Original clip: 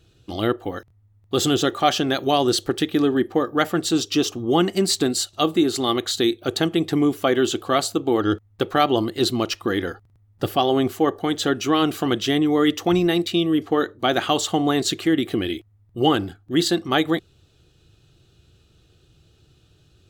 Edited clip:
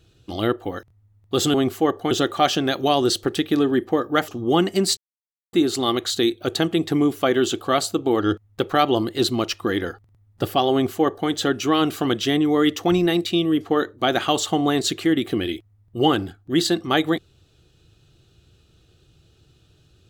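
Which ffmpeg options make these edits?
-filter_complex "[0:a]asplit=6[a][b][c][d][e][f];[a]atrim=end=1.542[g];[b]atrim=start=10.728:end=11.302[h];[c]atrim=start=1.538:end=3.712[i];[d]atrim=start=4.288:end=4.98,asetpts=PTS-STARTPTS,afade=t=out:st=0.688:d=0.004:c=hsin[j];[e]atrim=start=4.98:end=5.54,asetpts=PTS-STARTPTS,volume=0[k];[f]atrim=start=5.54,asetpts=PTS-STARTPTS,afade=t=in:d=0.004:c=hsin[l];[g][h]acrossfade=d=0.004:c1=hsin:c2=hsin[m];[m][i]acrossfade=d=0.004:c1=hsin:c2=hsin[n];[j][k][l]concat=n=3:v=0:a=1[o];[n][o]acrossfade=d=0.004:c1=hsin:c2=hsin"

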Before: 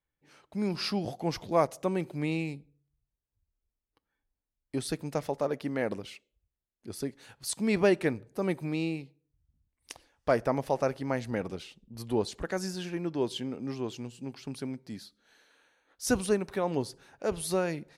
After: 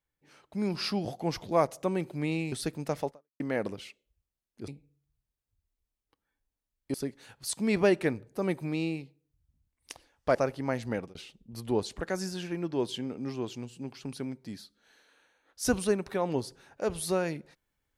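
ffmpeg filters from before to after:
-filter_complex "[0:a]asplit=7[a][b][c][d][e][f][g];[a]atrim=end=2.522[h];[b]atrim=start=4.778:end=5.66,asetpts=PTS-STARTPTS,afade=t=out:st=0.572:d=0.31:c=exp[i];[c]atrim=start=5.66:end=6.942,asetpts=PTS-STARTPTS,afade=t=in:d=0.004:c=hsin[j];[d]atrim=start=2.518:end=4.782[k];[e]atrim=start=6.938:end=10.352[l];[f]atrim=start=10.768:end=11.57,asetpts=PTS-STARTPTS,afade=t=out:st=0.542:d=0.26:c=qsin[m];[g]atrim=start=11.57,asetpts=PTS-STARTPTS,afade=t=in:d=0.004:c=hsin[n];[i][j]concat=n=2:v=0:a=1[o];[h][o]acrossfade=d=0.004:c1=hsin:c2=hsin[p];[p][k]acrossfade=d=0.004:c1=hsin:c2=hsin[q];[q][l]acrossfade=d=0.004:c1=hsin:c2=hsin[r];[m][n]concat=n=2:v=0:a=1[s];[r][s]acrossfade=d=0.004:c1=hsin:c2=hsin"

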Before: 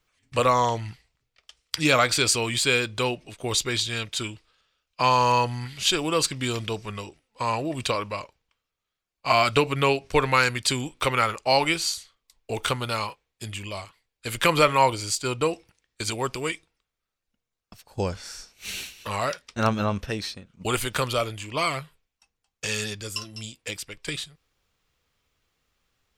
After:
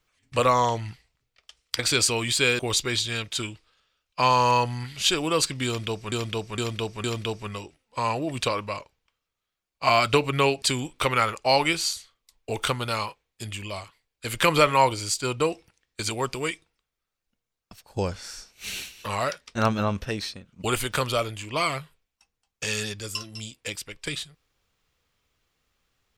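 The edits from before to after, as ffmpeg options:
-filter_complex "[0:a]asplit=7[a][b][c][d][e][f][g];[a]atrim=end=1.792[h];[b]atrim=start=2.048:end=2.852[i];[c]atrim=start=3.398:end=6.932[j];[d]atrim=start=6.468:end=6.932[k];[e]atrim=start=6.468:end=6.932[l];[f]atrim=start=6.468:end=10.052[m];[g]atrim=start=10.628[n];[h][i]acrossfade=d=0.004:c1=hsin:c2=hsin[o];[o][j]acrossfade=d=0.004:c1=hsin:c2=hsin[p];[p][k]acrossfade=d=0.004:c1=hsin:c2=hsin[q];[q][l]acrossfade=d=0.004:c1=hsin:c2=hsin[r];[r][m]acrossfade=d=0.004:c1=hsin:c2=hsin[s];[s][n]acrossfade=d=0.004:c1=hsin:c2=hsin"

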